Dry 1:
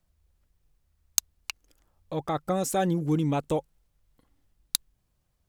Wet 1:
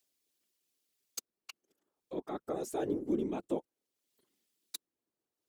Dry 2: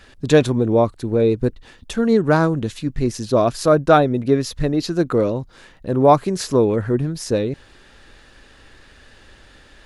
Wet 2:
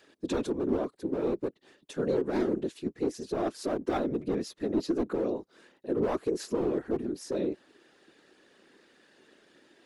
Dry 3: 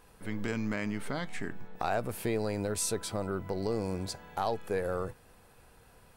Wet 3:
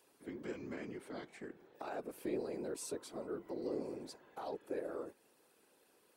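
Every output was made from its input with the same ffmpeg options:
-filter_complex "[0:a]highpass=f=330:t=q:w=3.9,acrossover=split=2500[a][b];[a]aeval=exprs='clip(val(0),-1,0.376)':c=same[c];[b]acompressor=mode=upward:threshold=-52dB:ratio=2.5[d];[c][d]amix=inputs=2:normalize=0,alimiter=limit=-7dB:level=0:latency=1:release=25,afftfilt=real='hypot(re,im)*cos(2*PI*random(0))':imag='hypot(re,im)*sin(2*PI*random(1))':win_size=512:overlap=0.75,volume=-8dB"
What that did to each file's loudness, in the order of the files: -9.5, -13.0, -10.0 LU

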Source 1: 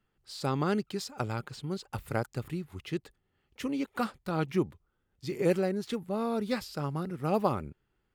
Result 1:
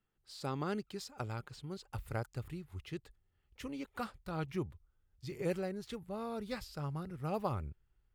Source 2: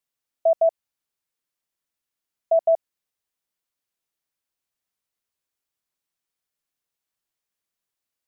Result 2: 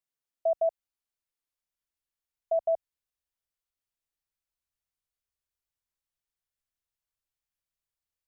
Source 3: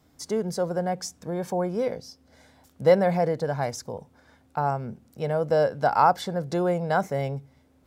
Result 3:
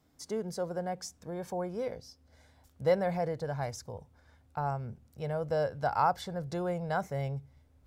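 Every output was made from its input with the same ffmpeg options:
-af "asubboost=boost=6.5:cutoff=90,volume=-7.5dB"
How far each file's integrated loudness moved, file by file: -8.5, -8.0, -8.5 LU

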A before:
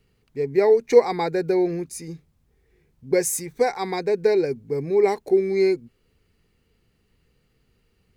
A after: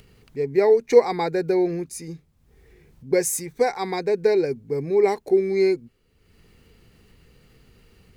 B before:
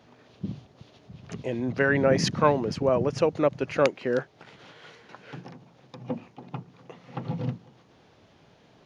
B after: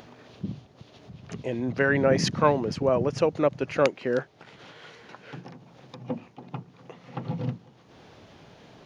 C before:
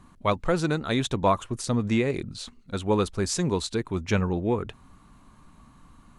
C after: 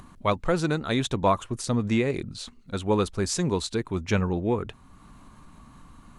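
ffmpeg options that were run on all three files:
-af "acompressor=mode=upward:threshold=-42dB:ratio=2.5"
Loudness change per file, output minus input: 0.0, 0.0, 0.0 LU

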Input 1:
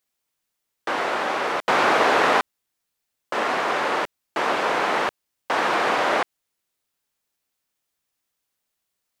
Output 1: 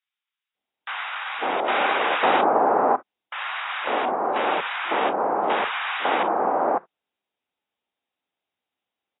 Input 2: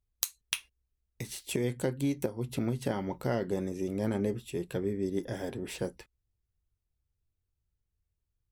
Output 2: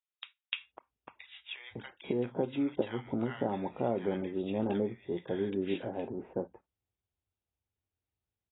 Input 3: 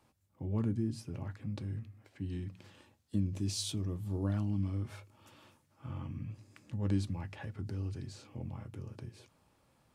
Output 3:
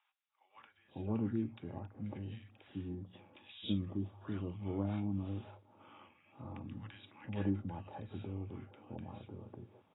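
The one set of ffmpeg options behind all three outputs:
-filter_complex "[0:a]highpass=120,equalizer=f=140:t=q:w=4:g=-9,equalizer=f=800:t=q:w=4:g=6,equalizer=f=1.8k:t=q:w=4:g=-3,lowpass=f=4.2k:w=0.5412,lowpass=f=4.2k:w=1.3066,acrossover=split=1200[a][b];[a]adelay=550[c];[c][b]amix=inputs=2:normalize=0" -ar 16000 -c:a aac -b:a 16k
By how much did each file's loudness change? -1.0, -1.0, -3.5 LU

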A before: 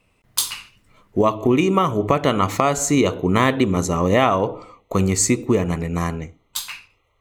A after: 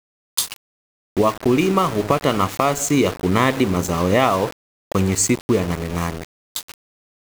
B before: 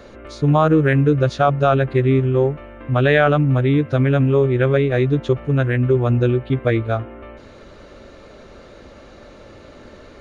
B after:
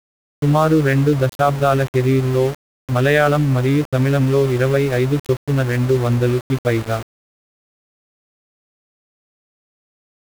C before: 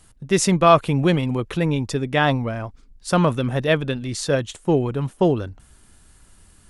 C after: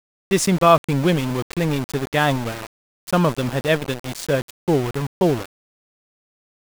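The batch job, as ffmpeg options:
-af "aeval=exprs='val(0)*gte(abs(val(0)),0.0596)':c=same"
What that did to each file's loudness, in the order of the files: 0.0, 0.0, 0.0 LU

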